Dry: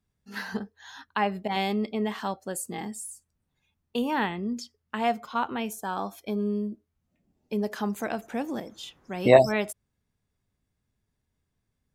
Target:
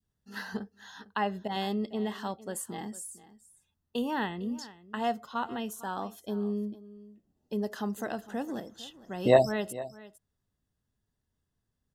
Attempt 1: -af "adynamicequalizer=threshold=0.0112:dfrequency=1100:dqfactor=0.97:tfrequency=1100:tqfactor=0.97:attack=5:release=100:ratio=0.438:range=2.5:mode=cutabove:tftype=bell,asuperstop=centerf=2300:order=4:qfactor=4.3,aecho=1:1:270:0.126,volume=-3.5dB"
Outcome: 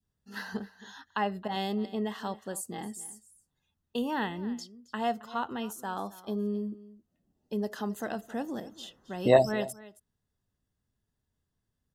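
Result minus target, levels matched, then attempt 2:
echo 0.184 s early
-af "adynamicequalizer=threshold=0.0112:dfrequency=1100:dqfactor=0.97:tfrequency=1100:tqfactor=0.97:attack=5:release=100:ratio=0.438:range=2.5:mode=cutabove:tftype=bell,asuperstop=centerf=2300:order=4:qfactor=4.3,aecho=1:1:454:0.126,volume=-3.5dB"

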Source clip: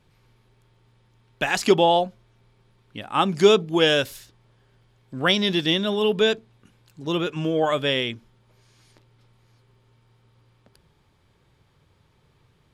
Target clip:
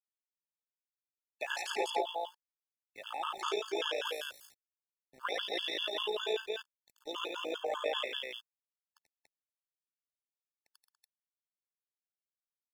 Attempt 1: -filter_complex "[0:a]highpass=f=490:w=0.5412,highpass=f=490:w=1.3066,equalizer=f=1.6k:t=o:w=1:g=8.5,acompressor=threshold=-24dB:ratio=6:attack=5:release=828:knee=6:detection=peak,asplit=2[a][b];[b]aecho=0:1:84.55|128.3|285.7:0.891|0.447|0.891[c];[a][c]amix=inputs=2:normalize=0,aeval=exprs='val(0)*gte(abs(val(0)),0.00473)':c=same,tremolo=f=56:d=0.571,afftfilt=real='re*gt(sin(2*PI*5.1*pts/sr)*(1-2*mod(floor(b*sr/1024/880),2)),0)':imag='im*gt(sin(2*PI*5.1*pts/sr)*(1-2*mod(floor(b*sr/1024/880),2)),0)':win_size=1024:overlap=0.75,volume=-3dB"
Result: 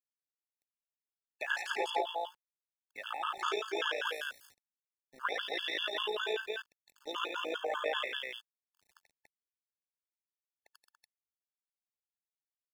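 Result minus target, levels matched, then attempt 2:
2000 Hz band +4.0 dB
-filter_complex "[0:a]highpass=f=490:w=0.5412,highpass=f=490:w=1.3066,equalizer=f=1.6k:t=o:w=1:g=-2,acompressor=threshold=-24dB:ratio=6:attack=5:release=828:knee=6:detection=peak,asplit=2[a][b];[b]aecho=0:1:84.55|128.3|285.7:0.891|0.447|0.891[c];[a][c]amix=inputs=2:normalize=0,aeval=exprs='val(0)*gte(abs(val(0)),0.00473)':c=same,tremolo=f=56:d=0.571,afftfilt=real='re*gt(sin(2*PI*5.1*pts/sr)*(1-2*mod(floor(b*sr/1024/880),2)),0)':imag='im*gt(sin(2*PI*5.1*pts/sr)*(1-2*mod(floor(b*sr/1024/880),2)),0)':win_size=1024:overlap=0.75,volume=-3dB"

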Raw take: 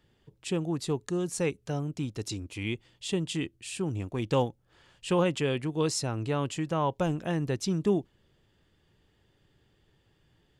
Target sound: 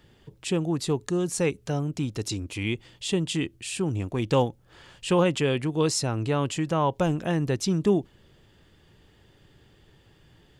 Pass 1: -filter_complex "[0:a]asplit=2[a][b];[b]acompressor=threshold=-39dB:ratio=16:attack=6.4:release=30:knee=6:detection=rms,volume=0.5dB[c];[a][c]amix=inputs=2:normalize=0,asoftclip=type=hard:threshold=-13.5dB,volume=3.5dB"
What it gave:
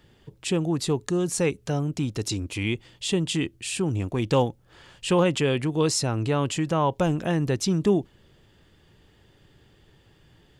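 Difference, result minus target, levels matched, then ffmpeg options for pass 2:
compressor: peak gain reduction -10.5 dB
-filter_complex "[0:a]asplit=2[a][b];[b]acompressor=threshold=-50dB:ratio=16:attack=6.4:release=30:knee=6:detection=rms,volume=0.5dB[c];[a][c]amix=inputs=2:normalize=0,asoftclip=type=hard:threshold=-13.5dB,volume=3.5dB"

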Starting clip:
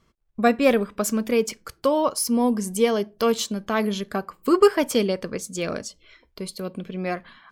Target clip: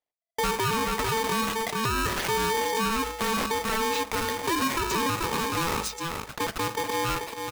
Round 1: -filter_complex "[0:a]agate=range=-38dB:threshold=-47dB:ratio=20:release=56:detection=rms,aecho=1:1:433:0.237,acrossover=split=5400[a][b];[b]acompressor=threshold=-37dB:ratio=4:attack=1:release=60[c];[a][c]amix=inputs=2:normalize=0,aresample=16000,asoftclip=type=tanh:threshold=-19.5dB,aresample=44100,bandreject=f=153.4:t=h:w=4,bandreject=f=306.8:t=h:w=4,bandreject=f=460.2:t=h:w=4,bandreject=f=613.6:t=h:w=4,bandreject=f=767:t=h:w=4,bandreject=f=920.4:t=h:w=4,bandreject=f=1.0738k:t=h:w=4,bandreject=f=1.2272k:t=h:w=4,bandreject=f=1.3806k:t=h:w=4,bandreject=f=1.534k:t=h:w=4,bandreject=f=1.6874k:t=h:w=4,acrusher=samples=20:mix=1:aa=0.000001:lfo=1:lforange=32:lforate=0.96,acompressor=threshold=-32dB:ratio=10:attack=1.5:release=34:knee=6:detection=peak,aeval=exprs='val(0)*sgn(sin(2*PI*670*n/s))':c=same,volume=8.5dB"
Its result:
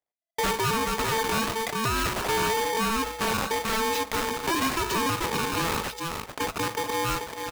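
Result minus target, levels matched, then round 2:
decimation with a swept rate: distortion +8 dB; soft clip: distortion +8 dB
-filter_complex "[0:a]agate=range=-38dB:threshold=-47dB:ratio=20:release=56:detection=rms,aecho=1:1:433:0.237,acrossover=split=5400[a][b];[b]acompressor=threshold=-37dB:ratio=4:attack=1:release=60[c];[a][c]amix=inputs=2:normalize=0,aresample=16000,asoftclip=type=tanh:threshold=-10.5dB,aresample=44100,bandreject=f=153.4:t=h:w=4,bandreject=f=306.8:t=h:w=4,bandreject=f=460.2:t=h:w=4,bandreject=f=613.6:t=h:w=4,bandreject=f=767:t=h:w=4,bandreject=f=920.4:t=h:w=4,bandreject=f=1.0738k:t=h:w=4,bandreject=f=1.2272k:t=h:w=4,bandreject=f=1.3806k:t=h:w=4,bandreject=f=1.534k:t=h:w=4,bandreject=f=1.6874k:t=h:w=4,acrusher=samples=7:mix=1:aa=0.000001:lfo=1:lforange=11.2:lforate=0.96,acompressor=threshold=-32dB:ratio=10:attack=1.5:release=34:knee=6:detection=peak,aeval=exprs='val(0)*sgn(sin(2*PI*670*n/s))':c=same,volume=8.5dB"

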